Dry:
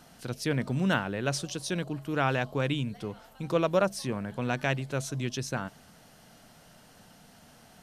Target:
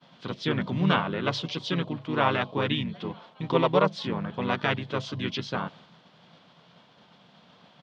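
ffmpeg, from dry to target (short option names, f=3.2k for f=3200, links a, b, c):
-filter_complex "[0:a]asplit=2[a][b];[b]asetrate=35002,aresample=44100,atempo=1.25992,volume=-2dB[c];[a][c]amix=inputs=2:normalize=0,highpass=150,equalizer=f=170:t=q:w=4:g=6,equalizer=f=1k:t=q:w=4:g=7,equalizer=f=3.4k:t=q:w=4:g=9,lowpass=f=4.5k:w=0.5412,lowpass=f=4.5k:w=1.3066,agate=range=-33dB:threshold=-48dB:ratio=3:detection=peak"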